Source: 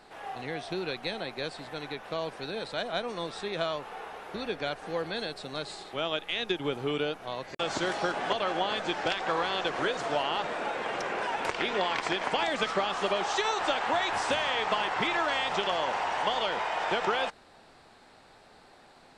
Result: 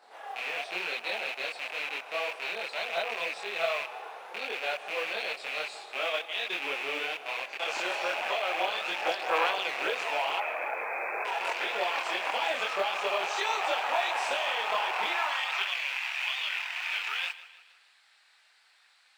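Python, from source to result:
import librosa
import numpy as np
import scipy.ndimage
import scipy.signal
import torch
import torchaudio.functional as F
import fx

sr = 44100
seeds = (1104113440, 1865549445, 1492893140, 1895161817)

p1 = fx.rattle_buzz(x, sr, strikes_db=-50.0, level_db=-19.0)
p2 = fx.brickwall_bandpass(p1, sr, low_hz=190.0, high_hz=2600.0, at=(10.37, 11.25))
p3 = fx.chorus_voices(p2, sr, voices=4, hz=1.2, base_ms=25, depth_ms=3.1, mix_pct=55)
p4 = fx.mod_noise(p3, sr, seeds[0], snr_db=32)
p5 = p4 + fx.echo_feedback(p4, sr, ms=156, feedback_pct=48, wet_db=-16.5, dry=0)
y = fx.filter_sweep_highpass(p5, sr, from_hz=590.0, to_hz=2000.0, start_s=15.0, end_s=15.83, q=1.2)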